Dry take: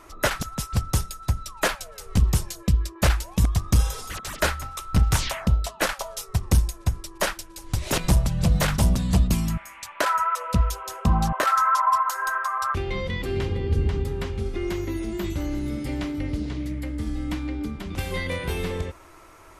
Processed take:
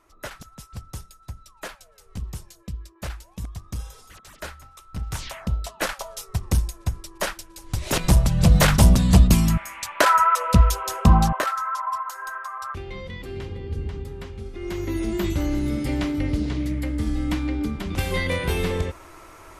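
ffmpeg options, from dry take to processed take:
ffmpeg -i in.wav -af "volume=17dB,afade=type=in:start_time=4.95:duration=0.89:silence=0.281838,afade=type=in:start_time=7.68:duration=0.96:silence=0.398107,afade=type=out:start_time=11.12:duration=0.42:silence=0.223872,afade=type=in:start_time=14.57:duration=0.48:silence=0.281838" out.wav

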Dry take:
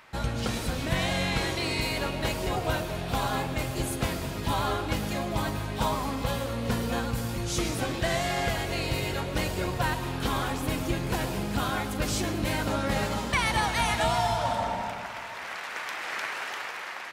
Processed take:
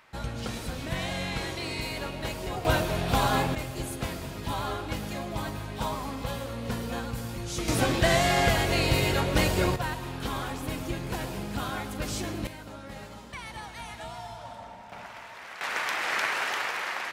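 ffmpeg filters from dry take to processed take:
ffmpeg -i in.wav -af "asetnsamples=nb_out_samples=441:pad=0,asendcmd='2.65 volume volume 4dB;3.55 volume volume -4dB;7.68 volume volume 5dB;9.76 volume volume -4dB;12.47 volume volume -14.5dB;14.92 volume volume -6dB;15.61 volume volume 5dB',volume=-4.5dB" out.wav

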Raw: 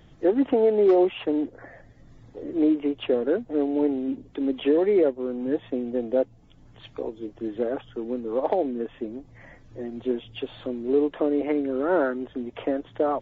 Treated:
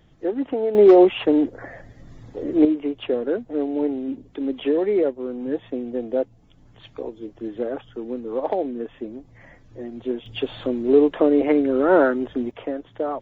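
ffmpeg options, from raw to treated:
ffmpeg -i in.wav -af "asetnsamples=nb_out_samples=441:pad=0,asendcmd='0.75 volume volume 7dB;2.65 volume volume 0dB;10.26 volume volume 6.5dB;12.51 volume volume -2dB',volume=-3.5dB" out.wav

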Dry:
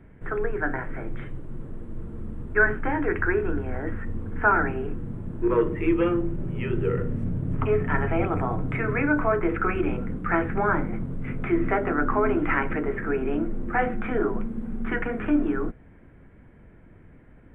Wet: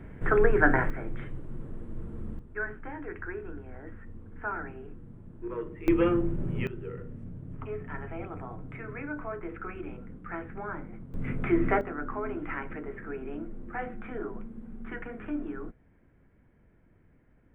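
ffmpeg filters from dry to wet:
ffmpeg -i in.wav -af "asetnsamples=nb_out_samples=441:pad=0,asendcmd='0.9 volume volume -3dB;2.39 volume volume -14dB;5.88 volume volume -1.5dB;6.67 volume volume -14dB;11.14 volume volume -1.5dB;11.81 volume volume -11.5dB',volume=5.5dB" out.wav

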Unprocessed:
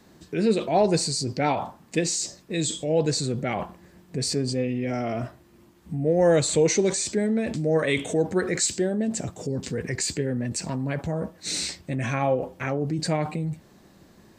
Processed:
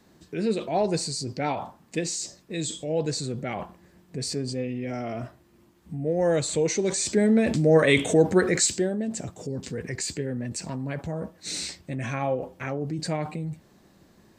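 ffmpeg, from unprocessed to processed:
ffmpeg -i in.wav -af "volume=4.5dB,afade=type=in:start_time=6.82:duration=0.5:silence=0.375837,afade=type=out:start_time=8.31:duration=0.71:silence=0.398107" out.wav

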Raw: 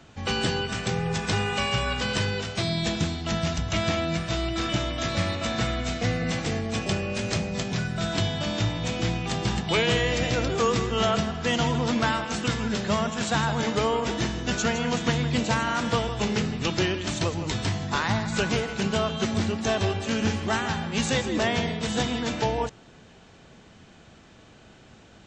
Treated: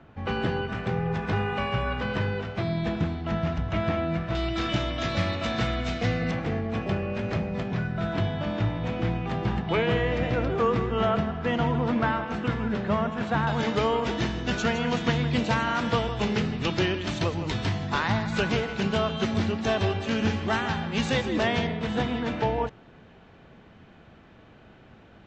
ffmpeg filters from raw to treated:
ffmpeg -i in.wav -af "asetnsamples=nb_out_samples=441:pad=0,asendcmd='4.35 lowpass f 4100;6.31 lowpass f 1900;13.47 lowpass f 4100;21.67 lowpass f 2500',lowpass=1800" out.wav

